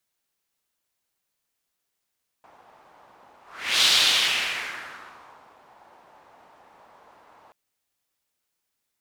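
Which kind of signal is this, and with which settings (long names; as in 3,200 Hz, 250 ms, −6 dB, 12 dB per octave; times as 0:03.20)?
pass-by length 5.08 s, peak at 0:01.40, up 0.45 s, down 1.83 s, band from 870 Hz, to 3,700 Hz, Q 2.2, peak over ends 35.5 dB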